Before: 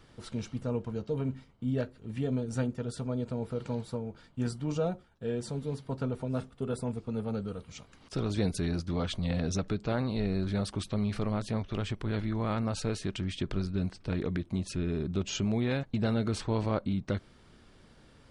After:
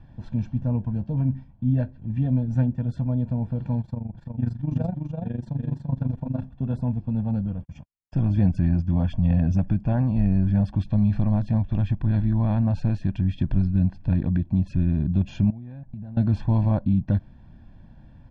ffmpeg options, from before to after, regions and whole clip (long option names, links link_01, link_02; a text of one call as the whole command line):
ffmpeg -i in.wav -filter_complex "[0:a]asettb=1/sr,asplit=3[link_01][link_02][link_03];[link_01]atrim=end=3.814[link_04];[link_02]atrim=start=3.81:end=6.42,asetpts=PTS-STARTPTS,afade=type=in:duration=0.004:curve=qsin,afade=type=out:start_time=2.606:duration=0.004:curve=qsin,aecho=1:1:342:0.631,atrim=end_sample=115101,tremolo=f=24:d=0.824[link_05];[link_03]atrim=start=6.416[link_06];[link_04][link_05]acrossfade=duration=0.004:curve1=hsin:curve2=qsin[link_07];[link_07][link_06]acrossfade=duration=0.004:curve1=qsin:curve2=hsin,asettb=1/sr,asplit=3[link_08][link_09][link_10];[link_08]atrim=end=7.464[link_11];[link_09]atrim=start=7.46:end=10.68,asetpts=PTS-STARTPTS,afade=type=in:duration=0.004:curve=qsin,afade=type=out:start_time=3.216:duration=0.004:curve=qsin,agate=range=-59dB:threshold=-49dB:ratio=16:release=100:detection=peak,asuperstop=centerf=3900:order=4:qfactor=4.2[link_12];[link_10]atrim=start=10.676[link_13];[link_11][link_12]acrossfade=duration=0.004:curve1=hsin:curve2=qsin[link_14];[link_14][link_13]acrossfade=duration=0.004:curve1=qsin:curve2=hsin,asettb=1/sr,asplit=3[link_15][link_16][link_17];[link_15]atrim=end=15.504[link_18];[link_16]atrim=start=15.5:end=16.17,asetpts=PTS-STARTPTS,afade=type=in:duration=0.004:curve=qsin,afade=type=out:start_time=0.666:duration=0.004:curve=qsin,highshelf=frequency=2100:gain=-10,acompressor=threshold=-43dB:ratio=10:attack=3.2:release=140:knee=1:detection=peak[link_19];[link_17]atrim=start=16.166[link_20];[link_18][link_19]acrossfade=duration=0.004:curve1=hsin:curve2=qsin[link_21];[link_21][link_20]acrossfade=duration=0.004:curve1=qsin:curve2=hsin,lowpass=3200,tiltshelf=frequency=650:gain=8,aecho=1:1:1.2:0.91" out.wav